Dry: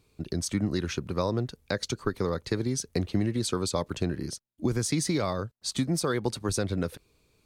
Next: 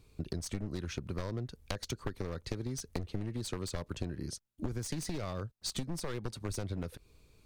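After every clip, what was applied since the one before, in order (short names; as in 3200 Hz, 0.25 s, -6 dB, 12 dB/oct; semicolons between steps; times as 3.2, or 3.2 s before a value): one-sided fold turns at -26 dBFS; low shelf 79 Hz +12 dB; compressor 4:1, threshold -35 dBFS, peak gain reduction 14 dB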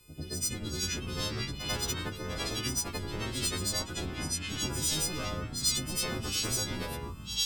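frequency quantiser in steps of 3 st; echoes that change speed 0.262 s, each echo -4 st, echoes 3; reverse echo 94 ms -9.5 dB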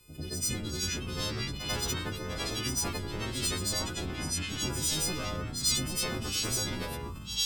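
sustainer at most 52 dB/s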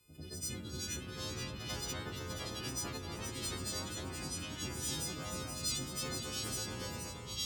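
HPF 51 Hz; on a send: echo with dull and thin repeats by turns 0.237 s, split 2300 Hz, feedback 72%, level -4 dB; on the sum: gain -9 dB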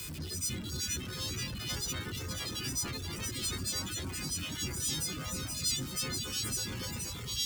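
zero-crossing step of -38.5 dBFS; reverb removal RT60 1.1 s; bell 670 Hz -9 dB 1.6 oct; gain +3.5 dB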